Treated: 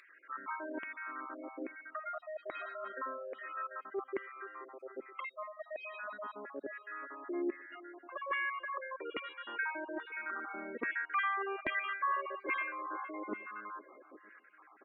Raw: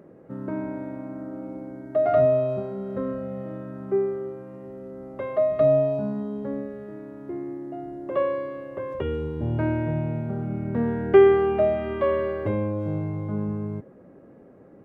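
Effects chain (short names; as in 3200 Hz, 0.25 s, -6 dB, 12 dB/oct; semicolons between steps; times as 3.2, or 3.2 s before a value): random spectral dropouts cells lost 38%; LFO high-pass saw down 1.2 Hz 440–2300 Hz; on a send: feedback echo 0.478 s, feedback 45%, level -21.5 dB; on the sum: soft clip -8.5 dBFS, distortion -20 dB; tone controls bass -14 dB, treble 0 dB; spectral gate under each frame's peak -25 dB strong; reverse; compressor 12:1, threshold -35 dBFS, peak gain reduction 21.5 dB; reverse; band shelf 630 Hz -15 dB 1.3 oct; gain +8 dB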